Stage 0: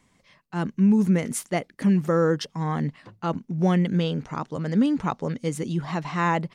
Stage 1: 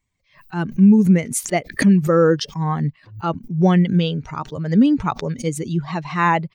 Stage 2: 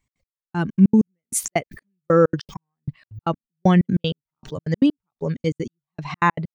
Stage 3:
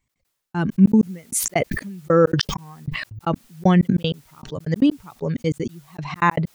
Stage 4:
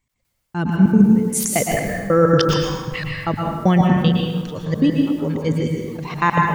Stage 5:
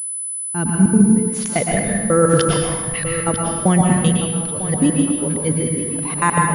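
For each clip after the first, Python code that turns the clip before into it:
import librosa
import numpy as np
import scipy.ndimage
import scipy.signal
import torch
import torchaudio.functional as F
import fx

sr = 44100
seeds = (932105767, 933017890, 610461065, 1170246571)

y1 = fx.bin_expand(x, sr, power=1.5)
y1 = fx.pre_swell(y1, sr, db_per_s=140.0)
y1 = F.gain(torch.from_numpy(y1), 8.0).numpy()
y2 = fx.step_gate(y1, sr, bpm=193, pattern='x.x....xx.', floor_db=-60.0, edge_ms=4.5)
y3 = fx.sustainer(y2, sr, db_per_s=47.0)
y4 = fx.rev_plate(y3, sr, seeds[0], rt60_s=1.5, hf_ratio=0.65, predelay_ms=100, drr_db=-1.0)
y5 = y4 + 10.0 ** (-12.0 / 20.0) * np.pad(y4, (int(948 * sr / 1000.0), 0))[:len(y4)]
y5 = fx.pwm(y5, sr, carrier_hz=10000.0)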